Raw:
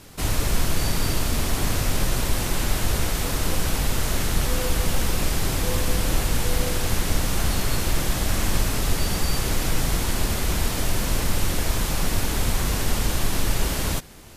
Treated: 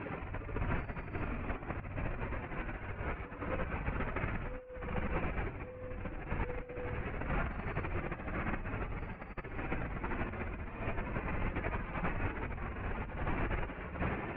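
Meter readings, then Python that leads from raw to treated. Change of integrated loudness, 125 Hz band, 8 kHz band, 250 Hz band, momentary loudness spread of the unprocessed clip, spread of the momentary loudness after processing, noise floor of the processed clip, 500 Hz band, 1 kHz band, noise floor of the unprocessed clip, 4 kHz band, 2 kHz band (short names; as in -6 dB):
-15.0 dB, -13.5 dB, under -40 dB, -12.0 dB, 1 LU, 5 LU, -47 dBFS, -11.0 dB, -10.0 dB, -27 dBFS, -30.5 dB, -10.5 dB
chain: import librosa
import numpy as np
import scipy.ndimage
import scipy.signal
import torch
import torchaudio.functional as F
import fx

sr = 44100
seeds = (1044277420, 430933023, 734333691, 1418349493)

p1 = fx.spec_expand(x, sr, power=1.9)
p2 = fx.highpass(p1, sr, hz=1100.0, slope=6)
p3 = fx.echo_feedback(p2, sr, ms=73, feedback_pct=47, wet_db=-4.0)
p4 = 10.0 ** (-39.5 / 20.0) * np.tanh(p3 / 10.0 ** (-39.5 / 20.0))
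p5 = p3 + F.gain(torch.from_numpy(p4), -4.5).numpy()
p6 = fx.over_compress(p5, sr, threshold_db=-48.0, ratio=-0.5)
p7 = scipy.signal.sosfilt(scipy.signal.cheby1(5, 1.0, 2500.0, 'lowpass', fs=sr, output='sos'), p6)
y = F.gain(torch.from_numpy(p7), 12.5).numpy()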